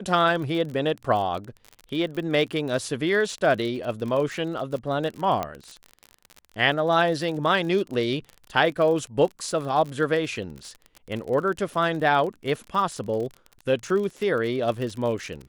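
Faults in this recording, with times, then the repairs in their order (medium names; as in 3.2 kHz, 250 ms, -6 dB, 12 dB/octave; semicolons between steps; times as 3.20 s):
crackle 41 per s -31 dBFS
5.43 s: pop -14 dBFS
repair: de-click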